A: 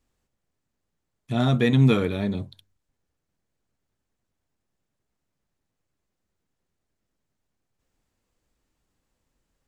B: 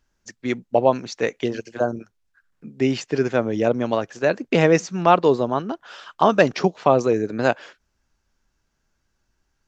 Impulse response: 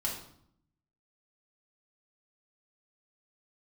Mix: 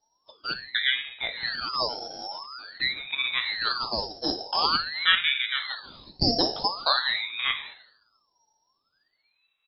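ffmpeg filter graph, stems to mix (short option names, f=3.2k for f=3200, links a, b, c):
-filter_complex "[0:a]volume=-3dB,asplit=2[a][b];[b]volume=-19dB[c];[1:a]highshelf=f=2.5k:t=q:w=1.5:g=-8,volume=-8.5dB,asplit=3[d][e][f];[e]volume=-5dB[g];[f]apad=whole_len=426693[h];[a][h]sidechaincompress=threshold=-34dB:ratio=6:attack=6.9:release=802[i];[2:a]atrim=start_sample=2205[j];[g][j]afir=irnorm=-1:irlink=0[k];[c]aecho=0:1:700|1400|2100|2800|3500|4200|4900:1|0.5|0.25|0.125|0.0625|0.0312|0.0156[l];[i][d][k][l]amix=inputs=4:normalize=0,lowpass=f=2.8k:t=q:w=0.5098,lowpass=f=2.8k:t=q:w=0.6013,lowpass=f=2.8k:t=q:w=0.9,lowpass=f=2.8k:t=q:w=2.563,afreqshift=-3300,aeval=exprs='val(0)*sin(2*PI*1500*n/s+1500*0.6/0.47*sin(2*PI*0.47*n/s))':c=same"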